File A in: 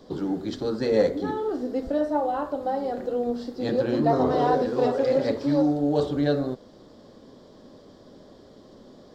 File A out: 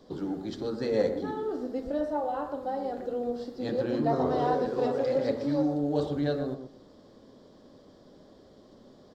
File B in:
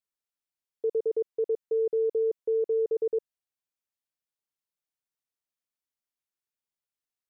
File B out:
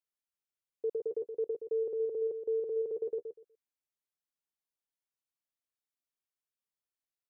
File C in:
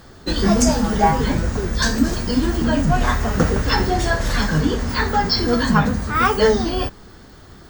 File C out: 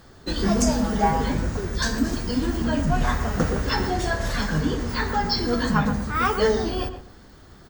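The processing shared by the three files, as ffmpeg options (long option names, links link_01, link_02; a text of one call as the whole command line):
ffmpeg -i in.wav -filter_complex "[0:a]asplit=2[link_01][link_02];[link_02]adelay=122,lowpass=frequency=1500:poles=1,volume=-8dB,asplit=2[link_03][link_04];[link_04]adelay=122,lowpass=frequency=1500:poles=1,volume=0.21,asplit=2[link_05][link_06];[link_06]adelay=122,lowpass=frequency=1500:poles=1,volume=0.21[link_07];[link_01][link_03][link_05][link_07]amix=inputs=4:normalize=0,volume=-5.5dB" out.wav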